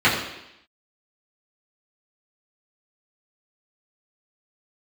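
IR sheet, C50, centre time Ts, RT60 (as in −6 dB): 5.0 dB, 41 ms, 0.85 s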